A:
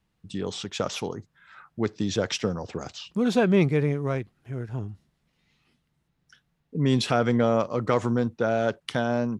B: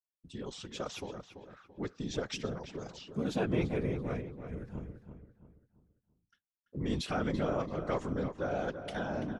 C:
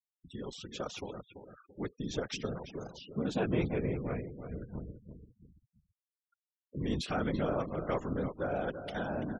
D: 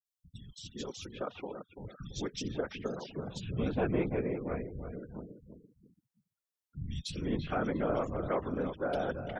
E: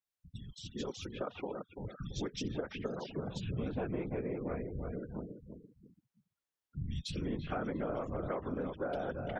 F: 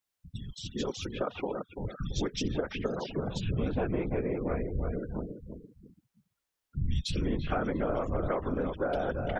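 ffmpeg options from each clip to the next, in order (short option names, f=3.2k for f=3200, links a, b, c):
-filter_complex "[0:a]afftfilt=real='hypot(re,im)*cos(2*PI*random(0))':imag='hypot(re,im)*sin(2*PI*random(1))':win_size=512:overlap=0.75,agate=range=-33dB:threshold=-54dB:ratio=3:detection=peak,asplit=2[a][b];[b]adelay=336,lowpass=f=2.8k:p=1,volume=-9dB,asplit=2[c][d];[d]adelay=336,lowpass=f=2.8k:p=1,volume=0.39,asplit=2[e][f];[f]adelay=336,lowpass=f=2.8k:p=1,volume=0.39,asplit=2[g][h];[h]adelay=336,lowpass=f=2.8k:p=1,volume=0.39[i];[a][c][e][g][i]amix=inputs=5:normalize=0,volume=-4.5dB"
-af "afftfilt=real='re*gte(hypot(re,im),0.00355)':imag='im*gte(hypot(re,im),0.00355)':win_size=1024:overlap=0.75"
-filter_complex "[0:a]acrossover=split=160|2800[a][b][c];[c]adelay=50[d];[b]adelay=410[e];[a][e][d]amix=inputs=3:normalize=0,volume=1.5dB"
-af "highshelf=f=4.5k:g=-8,acompressor=threshold=-36dB:ratio=6,volume=2.5dB"
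-af "asubboost=boost=2:cutoff=80,volume=6.5dB"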